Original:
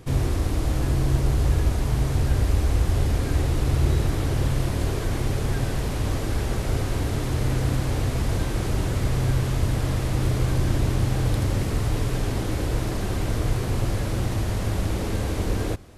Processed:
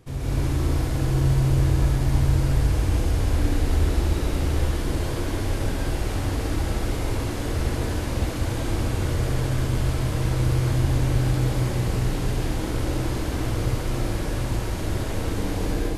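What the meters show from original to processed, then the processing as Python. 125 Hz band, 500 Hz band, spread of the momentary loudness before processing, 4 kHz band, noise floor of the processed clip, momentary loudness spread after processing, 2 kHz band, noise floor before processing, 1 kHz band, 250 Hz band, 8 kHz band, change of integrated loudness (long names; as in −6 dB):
0.0 dB, 0.0 dB, 4 LU, +0.5 dB, −28 dBFS, 6 LU, +0.5 dB, −27 dBFS, 0.0 dB, +1.0 dB, 0.0 dB, 0.0 dB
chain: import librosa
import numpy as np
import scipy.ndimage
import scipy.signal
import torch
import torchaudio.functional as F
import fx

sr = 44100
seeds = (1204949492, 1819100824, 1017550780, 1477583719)

y = fx.room_flutter(x, sr, wall_m=11.3, rt60_s=0.45)
y = fx.rev_plate(y, sr, seeds[0], rt60_s=1.9, hf_ratio=1.0, predelay_ms=115, drr_db=-7.0)
y = y * 10.0 ** (-8.0 / 20.0)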